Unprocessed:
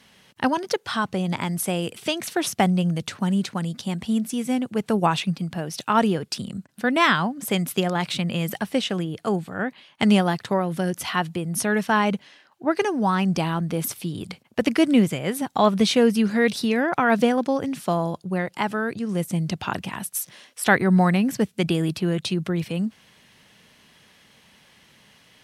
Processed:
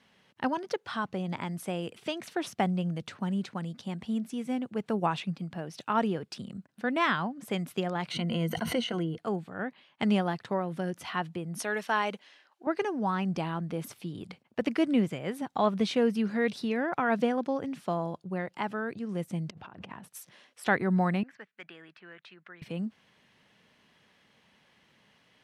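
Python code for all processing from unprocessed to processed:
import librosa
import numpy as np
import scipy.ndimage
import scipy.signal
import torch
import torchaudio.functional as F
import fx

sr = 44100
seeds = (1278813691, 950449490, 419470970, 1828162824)

y = fx.chain(x, sr, fx.ripple_eq(per_octave=1.9, db=12),
    fx.pre_swell(db_per_s=30.0), at=(8.11, 9.18))
y = fx.chain(y, sr, fx.highpass(hz=330.0, slope=12),
    fx.high_shelf(hz=2900.0, db=8.0), at=(11.59, 12.67))
y = fx.chain(y, sr, fx.law_mismatch(coded='mu'),
    fx.lowpass(hz=1400.0, slope=6),
    fx.over_compress(threshold_db=-39.0, ratio=-1.0), at=(19.5, 20.08))
y = fx.chain(y, sr, fx.bandpass_q(hz=1700.0, q=2.4),
    fx.clip_hard(threshold_db=-25.0), at=(21.23, 22.62))
y = fx.lowpass(y, sr, hz=2600.0, slope=6)
y = fx.low_shelf(y, sr, hz=98.0, db=-7.5)
y = y * 10.0 ** (-7.0 / 20.0)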